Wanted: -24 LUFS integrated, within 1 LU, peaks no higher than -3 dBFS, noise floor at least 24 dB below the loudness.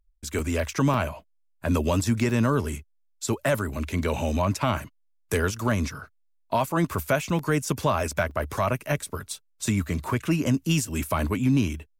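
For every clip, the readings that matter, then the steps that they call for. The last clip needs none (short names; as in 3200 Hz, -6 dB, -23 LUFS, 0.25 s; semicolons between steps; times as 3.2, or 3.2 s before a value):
dropouts 6; longest dropout 2.8 ms; loudness -26.5 LUFS; peak -12.5 dBFS; loudness target -24.0 LUFS
-> interpolate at 0.39/0.94/2.3/4.55/7.39/8.31, 2.8 ms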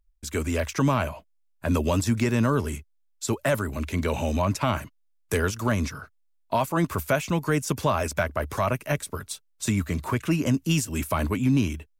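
dropouts 0; loudness -26.5 LUFS; peak -12.5 dBFS; loudness target -24.0 LUFS
-> gain +2.5 dB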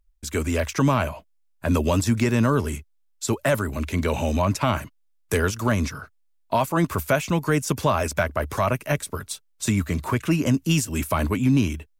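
loudness -24.0 LUFS; peak -10.0 dBFS; noise floor -63 dBFS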